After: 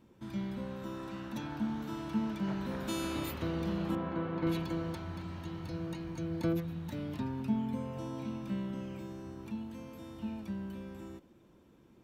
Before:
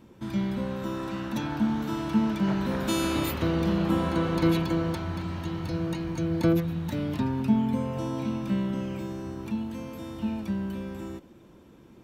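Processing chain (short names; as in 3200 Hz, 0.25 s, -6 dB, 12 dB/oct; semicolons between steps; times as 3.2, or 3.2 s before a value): 3.95–4.47 BPF 100–2200 Hz; gain -9 dB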